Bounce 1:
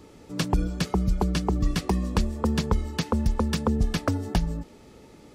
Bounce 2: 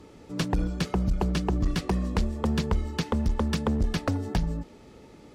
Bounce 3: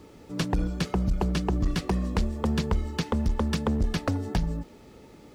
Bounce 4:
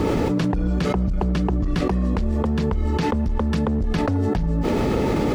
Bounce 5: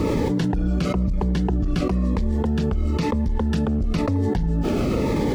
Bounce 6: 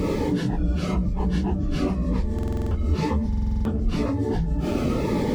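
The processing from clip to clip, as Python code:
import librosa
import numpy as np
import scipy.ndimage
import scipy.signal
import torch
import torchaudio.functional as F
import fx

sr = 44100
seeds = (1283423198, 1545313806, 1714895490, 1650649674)

y1 = fx.high_shelf(x, sr, hz=7400.0, db=-7.5)
y1 = fx.clip_asym(y1, sr, top_db=-22.0, bottom_db=-16.5)
y2 = fx.quant_dither(y1, sr, seeds[0], bits=12, dither='triangular')
y3 = fx.high_shelf(y2, sr, hz=3500.0, db=-11.5)
y3 = fx.env_flatten(y3, sr, amount_pct=100)
y4 = fx.notch_cascade(y3, sr, direction='falling', hz=1.0)
y5 = fx.phase_scramble(y4, sr, seeds[1], window_ms=100)
y5 = fx.buffer_glitch(y5, sr, at_s=(2.34, 3.28), block=2048, repeats=7)
y5 = y5 * librosa.db_to_amplitude(-2.0)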